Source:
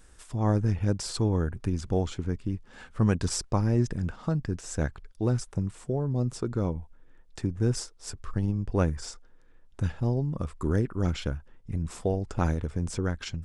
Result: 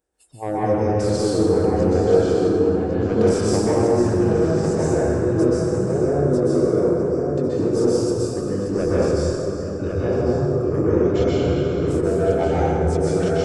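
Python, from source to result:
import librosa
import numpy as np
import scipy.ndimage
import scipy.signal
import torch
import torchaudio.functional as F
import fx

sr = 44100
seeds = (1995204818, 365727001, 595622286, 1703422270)

p1 = fx.reverse_delay_fb(x, sr, ms=514, feedback_pct=44, wet_db=-11.0)
p2 = scipy.signal.sosfilt(scipy.signal.butter(2, 58.0, 'highpass', fs=sr, output='sos'), p1)
p3 = fx.noise_reduce_blind(p2, sr, reduce_db=21)
p4 = fx.band_shelf(p3, sr, hz=510.0, db=11.0, octaves=1.7)
p5 = fx.level_steps(p4, sr, step_db=14)
p6 = p4 + (p5 * 10.0 ** (2.0 / 20.0))
p7 = 10.0 ** (-10.0 / 20.0) * np.tanh(p6 / 10.0 ** (-10.0 / 20.0))
p8 = fx.echo_filtered(p7, sr, ms=1103, feedback_pct=43, hz=3000.0, wet_db=-5.0)
p9 = fx.rev_plate(p8, sr, seeds[0], rt60_s=3.0, hf_ratio=0.5, predelay_ms=115, drr_db=-9.0)
p10 = fx.band_squash(p9, sr, depth_pct=70, at=(11.2, 12.01))
y = p10 * 10.0 ** (-7.0 / 20.0)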